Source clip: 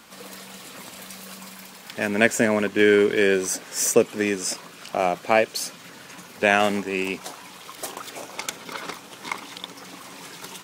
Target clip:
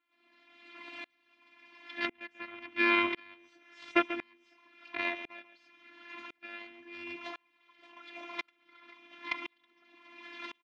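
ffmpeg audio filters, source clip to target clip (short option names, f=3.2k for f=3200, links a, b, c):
-filter_complex "[0:a]aecho=1:1:4.1:0.53,asplit=2[a][b];[b]acompressor=threshold=-29dB:ratio=6,volume=0.5dB[c];[a][c]amix=inputs=2:normalize=0,aeval=exprs='0.944*(cos(1*acos(clip(val(0)/0.944,-1,1)))-cos(1*PI/2))+0.211*(cos(7*acos(clip(val(0)/0.944,-1,1)))-cos(7*PI/2))':c=same,afftfilt=real='hypot(re,im)*cos(PI*b)':imag='0':win_size=512:overlap=0.75,highpass=120,equalizer=f=120:t=q:w=4:g=-4,equalizer=f=180:t=q:w=4:g=6,equalizer=f=430:t=q:w=4:g=-8,equalizer=f=740:t=q:w=4:g=-6,equalizer=f=2.2k:t=q:w=4:g=8,lowpass=f=3.5k:w=0.5412,lowpass=f=3.5k:w=1.3066,asplit=2[d][e];[e]aecho=0:1:139:0.15[f];[d][f]amix=inputs=2:normalize=0,aeval=exprs='val(0)*pow(10,-34*if(lt(mod(-0.95*n/s,1),2*abs(-0.95)/1000),1-mod(-0.95*n/s,1)/(2*abs(-0.95)/1000),(mod(-0.95*n/s,1)-2*abs(-0.95)/1000)/(1-2*abs(-0.95)/1000))/20)':c=same,volume=1.5dB"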